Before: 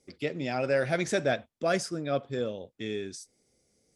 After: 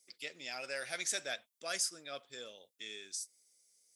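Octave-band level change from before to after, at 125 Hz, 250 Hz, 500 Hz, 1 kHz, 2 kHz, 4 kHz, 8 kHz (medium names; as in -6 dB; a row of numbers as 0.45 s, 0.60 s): -29.0 dB, -23.5 dB, -17.5 dB, -13.5 dB, -7.0 dB, -0.5 dB, +4.0 dB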